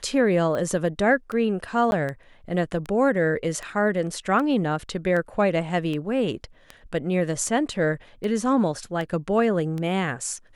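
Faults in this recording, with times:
tick 78 rpm -19 dBFS
1.91–1.92 gap 11 ms

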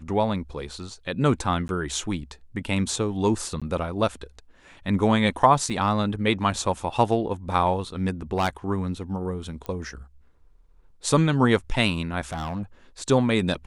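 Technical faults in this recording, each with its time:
1.68–1.69 gap
3.6–3.62 gap 16 ms
5.7 gap 4.7 ms
8.37–8.49 clipped -17 dBFS
9.66 pop -19 dBFS
12.32–12.63 clipped -26 dBFS

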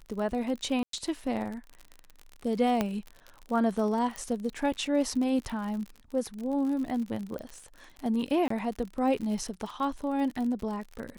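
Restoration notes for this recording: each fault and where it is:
crackle 54/s -35 dBFS
0.83–0.93 gap 0.103 s
2.81 pop -13 dBFS
4.16 pop -22 dBFS
7.39 pop -26 dBFS
8.48–8.5 gap 24 ms

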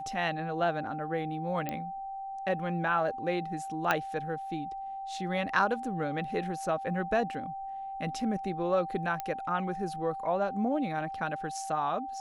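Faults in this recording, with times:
tone 780 Hz -36 dBFS
1.69 pop -19 dBFS
3.91 pop -12 dBFS
9.2 pop -19 dBFS

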